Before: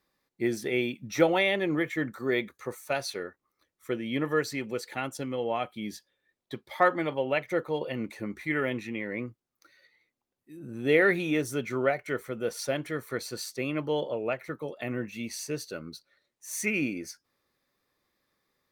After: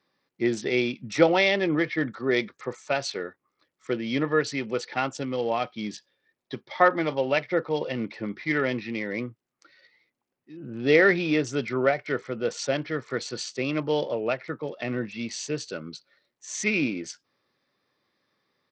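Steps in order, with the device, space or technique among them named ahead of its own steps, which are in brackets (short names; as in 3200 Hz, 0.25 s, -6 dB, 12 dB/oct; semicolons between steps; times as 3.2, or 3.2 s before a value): 4.71–5.13 dynamic EQ 940 Hz, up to +5 dB, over -44 dBFS, Q 1; Bluetooth headset (HPF 100 Hz 24 dB/oct; downsampling 16000 Hz; gain +3.5 dB; SBC 64 kbps 44100 Hz)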